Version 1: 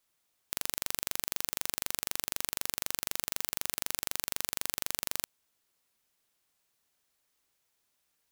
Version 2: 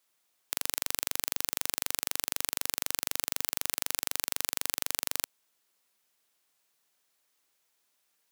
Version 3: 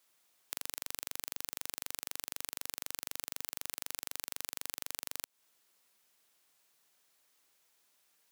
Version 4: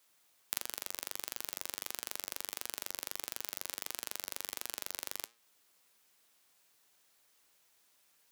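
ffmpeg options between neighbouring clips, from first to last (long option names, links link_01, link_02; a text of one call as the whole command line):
ffmpeg -i in.wav -af "highpass=frequency=280:poles=1,volume=2.5dB" out.wav
ffmpeg -i in.wav -af "acompressor=threshold=-34dB:ratio=12,volume=2.5dB" out.wav
ffmpeg -i in.wav -filter_complex "[0:a]flanger=delay=8.3:depth=3.2:regen=88:speed=1.5:shape=triangular,acrossover=split=330[link_01][link_02];[link_02]acrusher=bits=2:mode=log:mix=0:aa=0.000001[link_03];[link_01][link_03]amix=inputs=2:normalize=0,volume=6.5dB" out.wav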